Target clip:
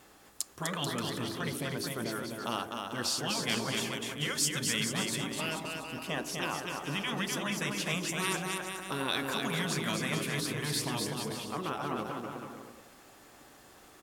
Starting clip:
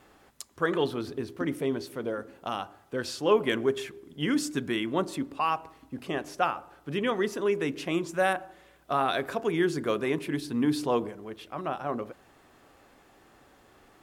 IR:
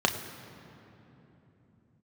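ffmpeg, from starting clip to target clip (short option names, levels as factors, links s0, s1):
-af "lowshelf=f=210:g=-12,afftfilt=real='re*lt(hypot(re,im),0.126)':imag='im*lt(hypot(re,im),0.126)':win_size=1024:overlap=0.75,bass=f=250:g=8,treble=f=4000:g=8,aecho=1:1:250|437.5|578.1|683.6|762.7:0.631|0.398|0.251|0.158|0.1"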